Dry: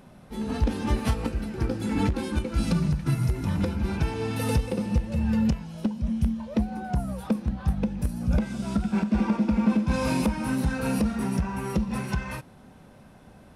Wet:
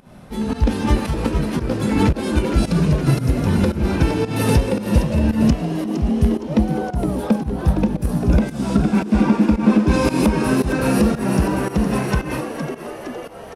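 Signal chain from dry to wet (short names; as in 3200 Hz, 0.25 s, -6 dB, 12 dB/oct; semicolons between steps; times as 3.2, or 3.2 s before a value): frequency-shifting echo 0.463 s, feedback 61%, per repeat +94 Hz, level -8.5 dB; pump 113 bpm, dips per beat 1, -15 dB, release 0.183 s; gain +8 dB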